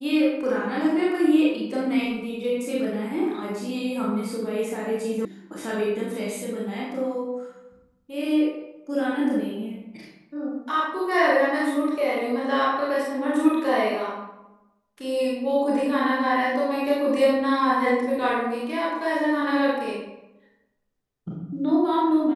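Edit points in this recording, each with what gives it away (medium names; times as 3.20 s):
5.25 s: sound stops dead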